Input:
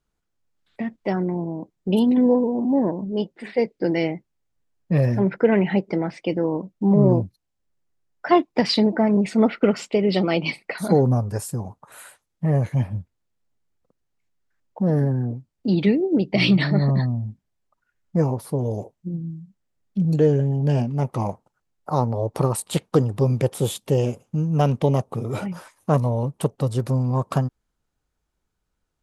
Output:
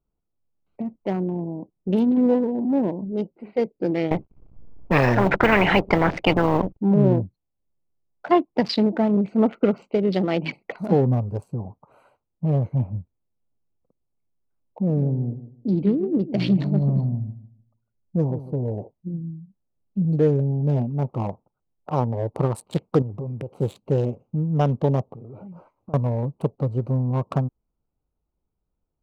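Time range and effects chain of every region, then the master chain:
4.11–6.77 G.711 law mismatch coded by A + tilt -3.5 dB/oct + spectral compressor 4:1
14.81–18.63 bell 1600 Hz -10 dB 1.9 oct + darkening echo 0.152 s, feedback 23%, low-pass 1500 Hz, level -13 dB
23.02–23.56 compressor 16:1, threshold -25 dBFS + mismatched tape noise reduction decoder only
25.13–25.94 high shelf 2500 Hz -8.5 dB + compressor 8:1, threshold -35 dBFS
whole clip: Wiener smoothing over 25 samples; bell 11000 Hz -9 dB 1.6 oct; gain -1 dB

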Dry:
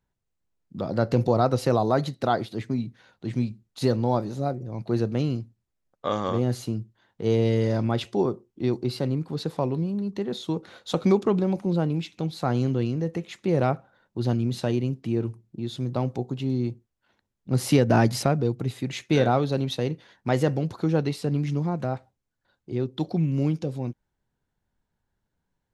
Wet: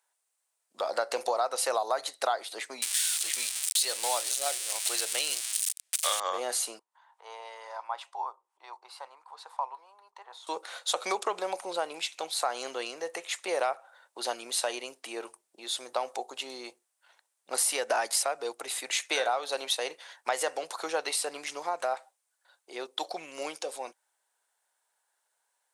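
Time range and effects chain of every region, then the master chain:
2.82–6.2 switching spikes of -25.5 dBFS + weighting filter D
6.79–10.47 tilt +3.5 dB/oct + upward compressor, threshold -46 dBFS + band-pass 940 Hz, Q 5
whole clip: HPF 630 Hz 24 dB/oct; bell 9000 Hz +15 dB 0.66 oct; compressor 6:1, threshold -31 dBFS; gain +6 dB

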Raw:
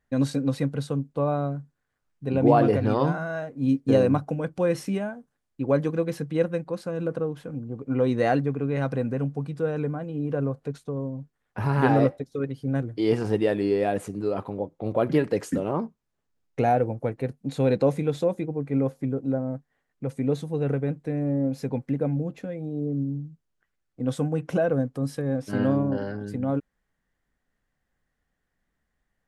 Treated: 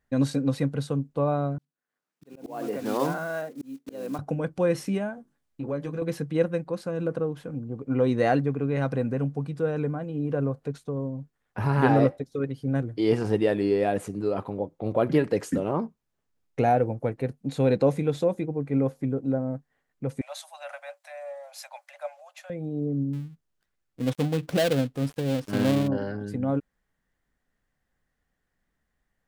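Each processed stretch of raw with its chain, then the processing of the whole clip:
1.58–4.19 block floating point 5-bit + HPF 190 Hz 24 dB/oct + auto swell 0.676 s
5.16–6.02 doubler 14 ms -5 dB + compressor 3:1, threshold -29 dBFS + notches 50/100/150/200/250/300/350/400 Hz
20.21–22.5 Chebyshev high-pass 570 Hz, order 10 + high shelf 3100 Hz +8.5 dB
23.13–25.88 switching dead time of 0.2 ms + dynamic EQ 3600 Hz, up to +4 dB, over -47 dBFS, Q 1.3
whole clip: dry

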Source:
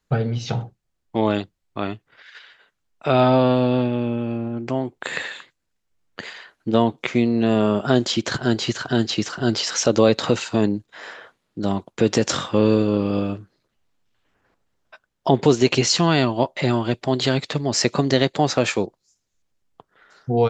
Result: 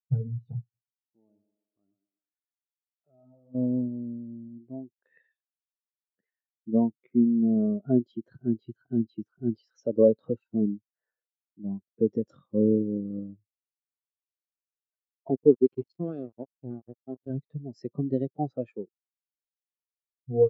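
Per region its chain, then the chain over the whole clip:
0.61–3.55 thinning echo 0.127 s, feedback 53%, high-pass 160 Hz, level -6.5 dB + compressor 2:1, threshold -41 dBFS
15.28–17.3 high shelf 2500 Hz -3.5 dB + notch comb 960 Hz + sample gate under -17.5 dBFS
whole clip: HPF 88 Hz 6 dB/oct; tilt -1.5 dB/oct; spectral expander 2.5:1; gain -4.5 dB

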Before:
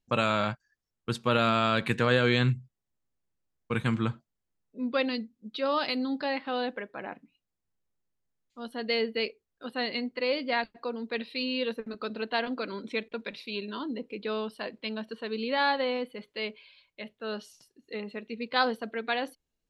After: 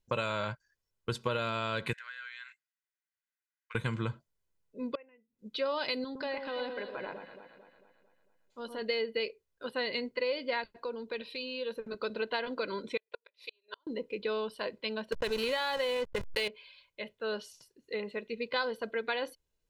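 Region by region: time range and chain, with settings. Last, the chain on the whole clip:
1.93–3.75 ladder high-pass 1300 Hz, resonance 45% + bell 1900 Hz +5 dB 0.89 oct + compressor 8:1, threshold -42 dBFS
4.95–5.39 flipped gate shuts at -29 dBFS, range -26 dB + rippled Chebyshev low-pass 2800 Hz, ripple 6 dB
6.04–8.82 compressor 2.5:1, threshold -36 dBFS + echo with dull and thin repeats by turns 0.112 s, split 1200 Hz, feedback 70%, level -6 dB
10.76–11.92 notch 2000 Hz, Q 10 + compressor 2.5:1, threshold -37 dBFS
12.97–13.87 HPF 460 Hz 24 dB/oct + flipped gate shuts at -27 dBFS, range -39 dB
15.12–16.48 tilt +2 dB/oct + backlash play -35 dBFS + fast leveller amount 70%
whole clip: comb 2 ms, depth 48%; compressor 5:1, threshold -29 dBFS

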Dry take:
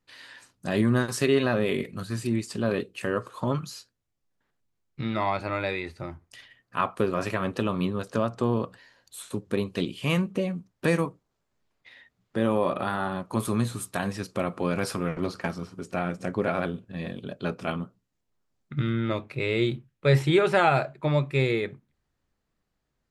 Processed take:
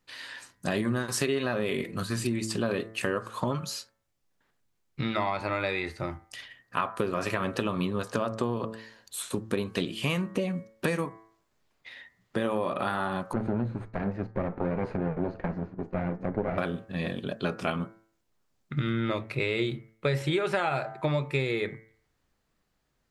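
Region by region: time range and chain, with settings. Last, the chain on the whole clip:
13.33–16.58 minimum comb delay 0.45 ms + LPF 1000 Hz
whole clip: low shelf 460 Hz -3.5 dB; de-hum 110.9 Hz, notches 20; compressor 6:1, threshold -30 dBFS; gain +5.5 dB

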